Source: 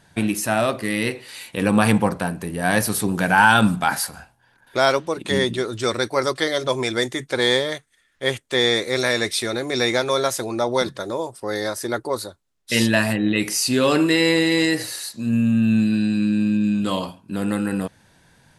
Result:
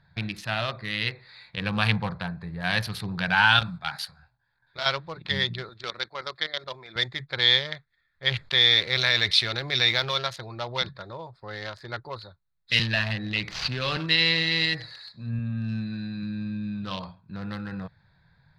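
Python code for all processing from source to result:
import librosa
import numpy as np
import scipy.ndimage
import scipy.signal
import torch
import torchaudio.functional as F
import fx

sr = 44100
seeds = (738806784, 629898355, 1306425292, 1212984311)

y = fx.chain(x, sr, fx.high_shelf(hz=3800.0, db=10.0),
    fx.level_steps(step_db=9),
    fx.detune_double(cents=39), at=(3.59, 4.86))
y = fx.chain(y, sr, fx.highpass(hz=230.0, slope=12),
    fx.level_steps(step_db=11), at=(5.69, 6.96))
y = fx.chain(y, sr, fx.block_float(bits=5),
    fx.env_flatten(amount_pct=50), at=(8.31, 10.18))
y = fx.chain(y, sr, fx.cvsd(bps=64000),
    fx.band_squash(depth_pct=40), at=(12.79, 13.97))
y = fx.chain(y, sr, fx.highpass(hz=93.0, slope=6),
    fx.high_shelf(hz=8900.0, db=-3.5), at=(15.39, 16.23))
y = fx.wiener(y, sr, points=15)
y = fx.curve_eq(y, sr, hz=(160.0, 260.0, 4200.0, 7500.0), db=(0, -18, 9, -16))
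y = y * 10.0 ** (-2.5 / 20.0)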